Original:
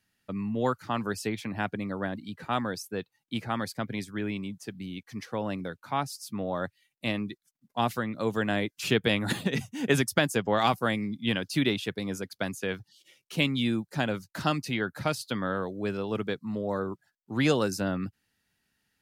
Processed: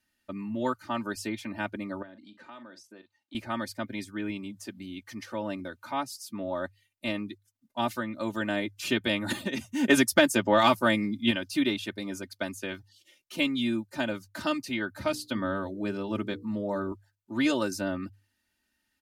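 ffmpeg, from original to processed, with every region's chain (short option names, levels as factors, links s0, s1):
-filter_complex "[0:a]asettb=1/sr,asplit=3[s0][s1][s2];[s0]atrim=end=2.024[s3];[s1]atrim=start=2.02:end=3.35,asetpts=PTS-STARTPTS,afade=t=in:d=0.004:c=qsin,afade=t=out:st=1.326:d=0.004:c=qsin,asplit=2[s4][s5];[s5]adelay=42,volume=0.2[s6];[s4][s6]amix=inputs=2:normalize=0,atrim=end_sample=58653,acompressor=threshold=0.00501:ratio=3:attack=3.2:release=140:knee=1:detection=peak,highpass=200,lowpass=6300[s7];[s2]atrim=start=3.346[s8];[s3][s7]acrossfade=d=0.004:c1=hsin:c2=qsin[s9];[s9][s8]acrossfade=d=0.004:c1=qsin:c2=hsin,asettb=1/sr,asplit=3[s10][s11][s12];[s10]atrim=end=4.294[s13];[s11]atrim=start=4.29:end=6.23,asetpts=PTS-STARTPTS,afade=t=in:d=0.004:c=qsin,afade=t=out:st=1.936:d=0.004:c=qsin,acompressor=mode=upward:threshold=0.0178:ratio=2.5:attack=3.2:release=140:knee=2.83:detection=peak,highpass=45[s14];[s12]atrim=start=6.226[s15];[s13][s14]acrossfade=d=0.004:c1=hsin:c2=qsin[s16];[s16][s15]acrossfade=d=0.004:c1=qsin:c2=hsin,asettb=1/sr,asplit=3[s17][s18][s19];[s17]atrim=end=9.694[s20];[s18]atrim=start=9.69:end=11.31,asetpts=PTS-STARTPTS,afade=t=in:d=0.004:c=qsin,afade=t=out:st=1.616:d=0.004:c=qsin,bandreject=f=50:t=h:w=6,bandreject=f=100:t=h:w=6,acontrast=35[s21];[s19]atrim=start=11.306[s22];[s20][s21]acrossfade=d=0.004:c1=hsin:c2=qsin[s23];[s23][s22]acrossfade=d=0.004:c1=qsin:c2=hsin,asettb=1/sr,asplit=3[s24][s25][s26];[s24]atrim=end=14.954[s27];[s25]atrim=start=14.95:end=16.92,asetpts=PTS-STARTPTS,afade=t=in:d=0.004:c=qsin,afade=t=out:st=1.966:d=0.004:c=qsin,lowshelf=f=260:g=7,bandreject=f=60:t=h:w=6,bandreject=f=120:t=h:w=6,bandreject=f=180:t=h:w=6,bandreject=f=240:t=h:w=6,bandreject=f=300:t=h:w=6,bandreject=f=360:t=h:w=6,bandreject=f=420:t=h:w=6,bandreject=f=480:t=h:w=6[s28];[s26]atrim=start=16.916[s29];[s27][s28]acrossfade=d=0.004:c1=hsin:c2=qsin[s30];[s30][s29]acrossfade=d=0.004:c1=qsin:c2=hsin,bandreject=f=50:t=h:w=6,bandreject=f=100:t=h:w=6,aecho=1:1:3.3:0.93,volume=0.631"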